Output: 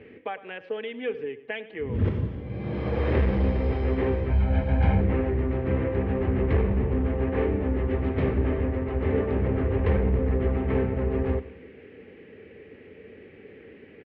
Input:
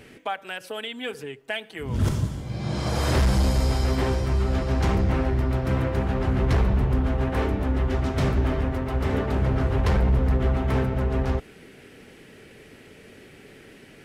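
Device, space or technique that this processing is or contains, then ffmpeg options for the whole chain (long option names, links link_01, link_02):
bass cabinet: -filter_complex "[0:a]asettb=1/sr,asplit=3[link_01][link_02][link_03];[link_01]atrim=end=4.304[link_04];[link_02]atrim=start=4.3:end=5.01,asetpts=PTS-STARTPTS,afade=type=in:duration=0.004:curve=qsin,afade=type=out:start_time=0.706:duration=0.004:curve=qsin,aecho=1:1:1.3:0.78,atrim=end_sample=31311[link_05];[link_03]atrim=start=5.006[link_06];[link_04][link_05]acrossfade=duration=0.004:curve1=hsin:curve2=qsin[link_07];[link_07][link_06]acrossfade=duration=0.004:curve1=qsin:curve2=hsin,highpass=78,equalizer=frequency=79:width_type=q:width=4:gain=5,equalizer=frequency=140:width_type=q:width=4:gain=-8,equalizer=frequency=460:width_type=q:width=4:gain=7,equalizer=frequency=680:width_type=q:width=4:gain=-7,equalizer=frequency=970:width_type=q:width=4:gain=-6,equalizer=frequency=1400:width_type=q:width=4:gain=-9,lowpass=frequency=2400:width=0.5412,lowpass=frequency=2400:width=1.3066,aecho=1:1:102|204|306|408:0.133|0.0613|0.0282|0.013"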